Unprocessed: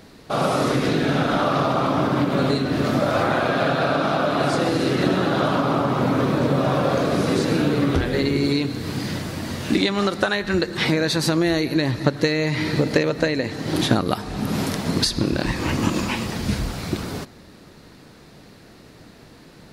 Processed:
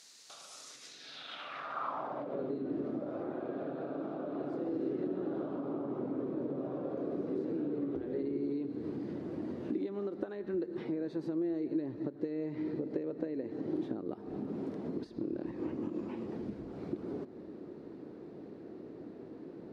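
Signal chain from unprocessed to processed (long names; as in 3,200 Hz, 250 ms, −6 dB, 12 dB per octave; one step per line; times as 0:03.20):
downward compressor 8 to 1, threshold −34 dBFS, peak gain reduction 21 dB
band-pass filter sweep 6,700 Hz → 350 Hz, 0:00.91–0:02.53
level +5.5 dB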